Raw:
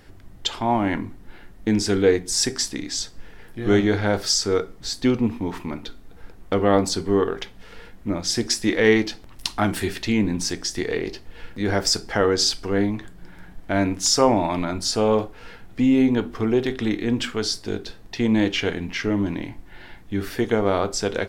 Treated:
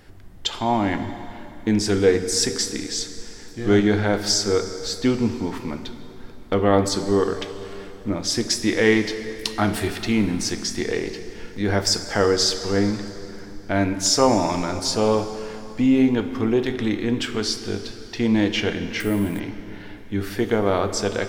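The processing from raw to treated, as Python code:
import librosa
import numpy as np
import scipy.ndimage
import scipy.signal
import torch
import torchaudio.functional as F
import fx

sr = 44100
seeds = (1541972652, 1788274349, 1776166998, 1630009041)

y = fx.rev_plate(x, sr, seeds[0], rt60_s=3.2, hf_ratio=0.85, predelay_ms=0, drr_db=9.0)
y = fx.resample_bad(y, sr, factor=4, down='filtered', up='hold', at=(19.0, 19.4))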